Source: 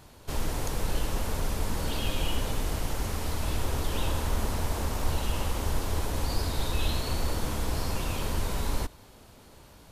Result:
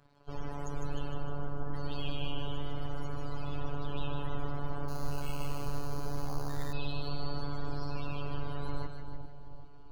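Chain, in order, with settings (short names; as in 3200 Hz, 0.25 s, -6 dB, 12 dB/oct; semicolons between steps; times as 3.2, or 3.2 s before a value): 1.13–1.74 LPF 1600 Hz 12 dB/oct; loudest bins only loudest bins 64; crossover distortion -57 dBFS; robotiser 143 Hz; split-band echo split 820 Hz, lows 0.39 s, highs 0.153 s, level -5.5 dB; 4.88–6.73 careless resampling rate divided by 8×, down none, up hold; gain -4 dB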